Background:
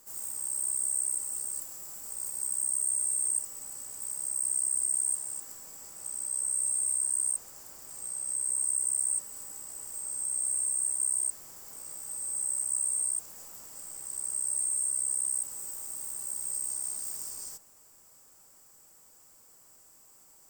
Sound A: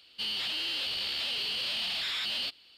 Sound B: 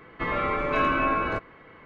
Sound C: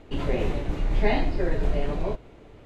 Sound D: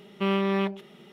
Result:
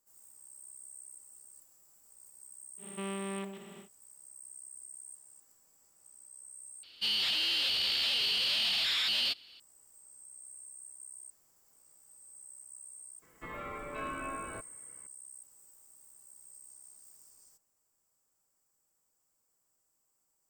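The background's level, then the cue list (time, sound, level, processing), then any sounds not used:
background −20 dB
0:02.77: mix in D −14 dB, fades 0.10 s + compressor on every frequency bin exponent 0.4
0:06.83: overwrite with A −1 dB + high-shelf EQ 2,500 Hz +5.5 dB
0:13.22: mix in B −15.5 dB
not used: C

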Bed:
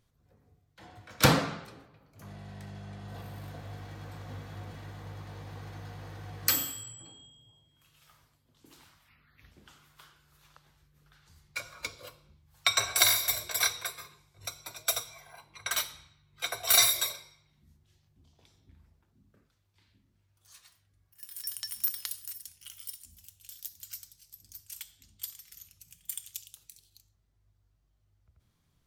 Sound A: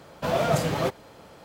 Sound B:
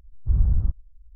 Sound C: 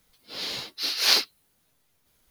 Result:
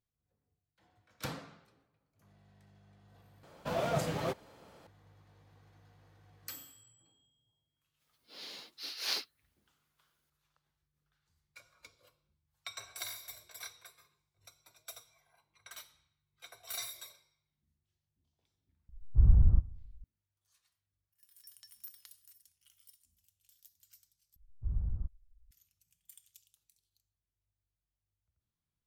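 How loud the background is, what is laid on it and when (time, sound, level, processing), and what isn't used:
bed −19 dB
0:03.43: overwrite with A −9 dB
0:08.00: mix in C −14.5 dB + high-pass filter 180 Hz 24 dB per octave
0:18.89: mix in B −2.5 dB + spring reverb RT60 1 s, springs 34/45 ms, DRR 20 dB
0:24.36: overwrite with B −14.5 dB

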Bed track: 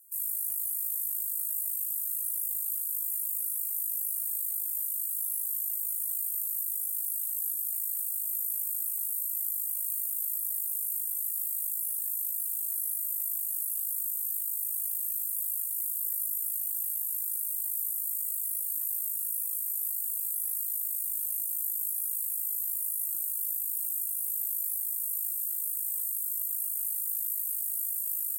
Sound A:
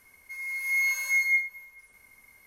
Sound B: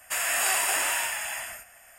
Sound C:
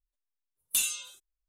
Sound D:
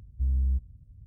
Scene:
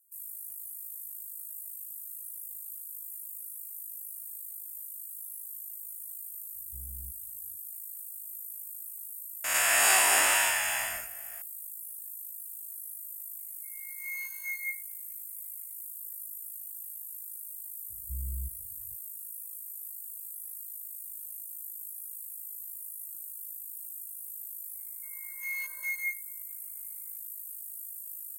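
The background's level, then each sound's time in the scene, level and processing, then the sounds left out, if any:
bed track −10 dB
0:06.53: mix in D −9 dB, fades 0.05 s + low-shelf EQ 290 Hz −11.5 dB
0:09.44: mix in B + peak hold with a rise ahead of every peak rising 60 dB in 0.93 s
0:13.34: mix in A −11 dB, fades 0.05 s + expander for the loud parts, over −44 dBFS
0:17.90: mix in D −10.5 dB
0:24.73: mix in A −8 dB, fades 0.02 s + adaptive Wiener filter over 15 samples
not used: C

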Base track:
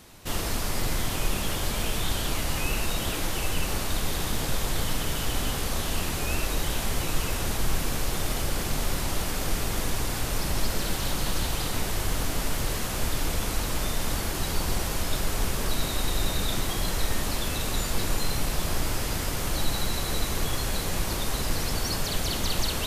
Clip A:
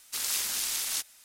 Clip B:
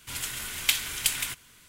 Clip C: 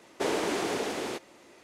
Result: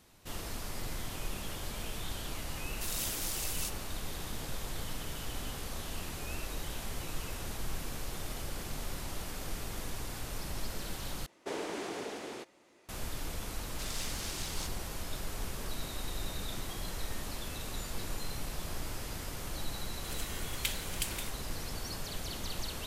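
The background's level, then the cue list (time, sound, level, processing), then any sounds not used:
base track −11.5 dB
0:02.68: mix in A −9.5 dB + high-shelf EQ 10,000 Hz +6 dB
0:11.26: overwrite with C −9 dB
0:13.66: mix in A −7 dB + high-frequency loss of the air 53 metres
0:19.96: mix in B −11 dB + buffer that repeats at 0:00.33

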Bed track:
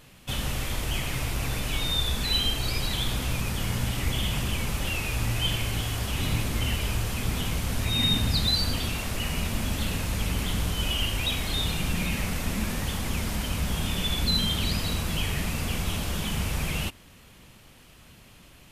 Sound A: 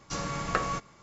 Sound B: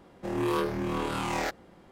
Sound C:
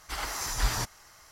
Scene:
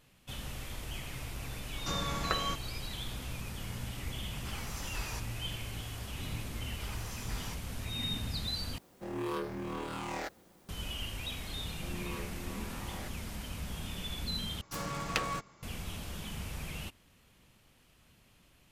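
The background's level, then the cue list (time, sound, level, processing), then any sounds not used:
bed track −12 dB
0:01.76: mix in A −4 dB + multiband upward and downward compressor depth 40%
0:04.35: mix in C −12 dB
0:06.70: mix in C −14.5 dB
0:08.78: overwrite with B −8 dB + bit-depth reduction 10 bits, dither triangular
0:11.58: mix in B −16.5 dB
0:14.61: overwrite with A −3.5 dB + phase distortion by the signal itself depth 0.45 ms

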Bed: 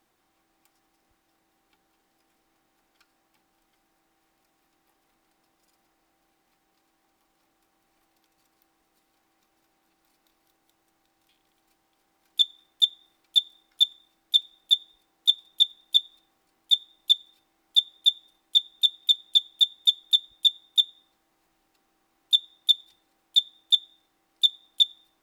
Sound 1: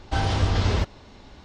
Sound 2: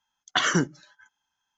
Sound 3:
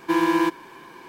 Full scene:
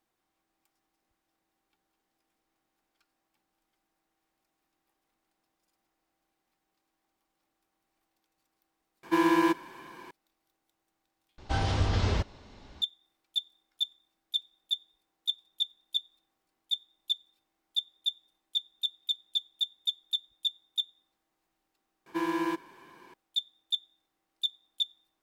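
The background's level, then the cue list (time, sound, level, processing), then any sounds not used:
bed −10.5 dB
0:09.03: mix in 3 −3.5 dB + notch filter 420 Hz
0:11.38: overwrite with 1 −5 dB
0:22.06: overwrite with 3 −10 dB
not used: 2

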